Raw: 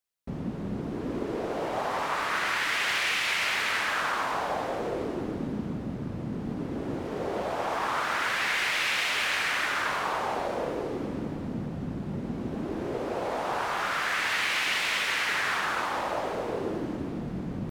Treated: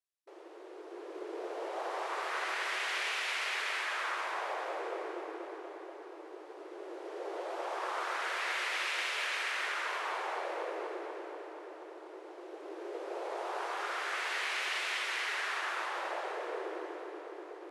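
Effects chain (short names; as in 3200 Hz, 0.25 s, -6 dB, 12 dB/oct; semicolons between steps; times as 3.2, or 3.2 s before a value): brick-wall FIR band-pass 320–12000 Hz; darkening echo 0.241 s, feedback 76%, low-pass 4400 Hz, level -7 dB; gain -8.5 dB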